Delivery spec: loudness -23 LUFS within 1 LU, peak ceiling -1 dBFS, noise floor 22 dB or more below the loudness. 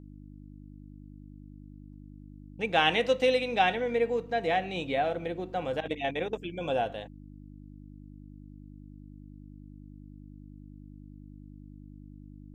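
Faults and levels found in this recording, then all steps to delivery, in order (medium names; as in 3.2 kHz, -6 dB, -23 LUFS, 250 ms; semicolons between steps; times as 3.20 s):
hum 50 Hz; highest harmonic 300 Hz; hum level -45 dBFS; loudness -29.0 LUFS; peak level -9.0 dBFS; loudness target -23.0 LUFS
-> de-hum 50 Hz, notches 6; trim +6 dB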